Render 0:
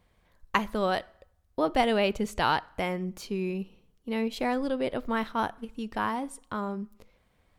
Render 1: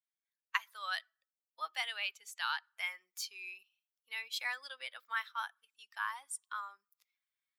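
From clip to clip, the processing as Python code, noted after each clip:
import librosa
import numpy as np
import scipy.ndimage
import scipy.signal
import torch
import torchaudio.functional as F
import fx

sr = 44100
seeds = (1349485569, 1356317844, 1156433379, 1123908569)

y = fx.bin_expand(x, sr, power=1.5)
y = scipy.signal.sosfilt(scipy.signal.butter(4, 1300.0, 'highpass', fs=sr, output='sos'), y)
y = fx.rider(y, sr, range_db=5, speed_s=0.5)
y = F.gain(torch.from_numpy(y), 1.0).numpy()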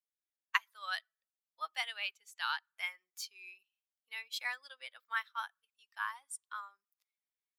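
y = fx.upward_expand(x, sr, threshold_db=-54.0, expansion=1.5)
y = F.gain(torch.from_numpy(y), 3.0).numpy()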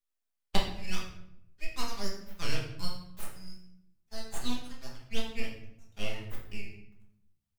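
y = np.abs(x)
y = fx.room_shoebox(y, sr, seeds[0], volume_m3=190.0, walls='mixed', distance_m=1.3)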